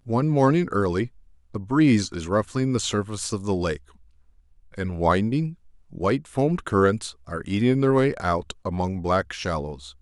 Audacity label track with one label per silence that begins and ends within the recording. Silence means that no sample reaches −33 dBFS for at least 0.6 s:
3.770000	4.740000	silence